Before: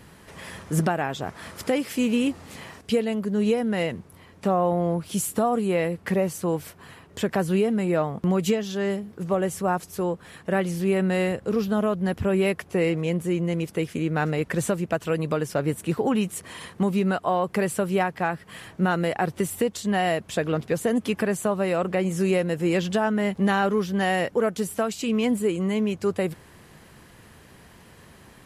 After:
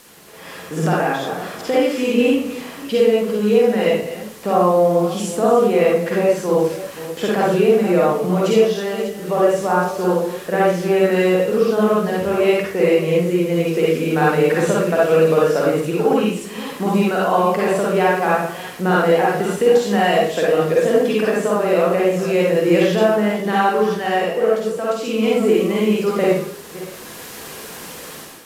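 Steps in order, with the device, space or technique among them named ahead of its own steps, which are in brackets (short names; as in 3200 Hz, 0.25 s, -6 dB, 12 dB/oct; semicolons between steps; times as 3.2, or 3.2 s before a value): reverse delay 0.282 s, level -12.5 dB; filmed off a television (BPF 220–6100 Hz; bell 470 Hz +4 dB 0.36 oct; reverb RT60 0.50 s, pre-delay 44 ms, DRR -5 dB; white noise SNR 25 dB; AGC; gain -3 dB; AAC 96 kbps 32000 Hz)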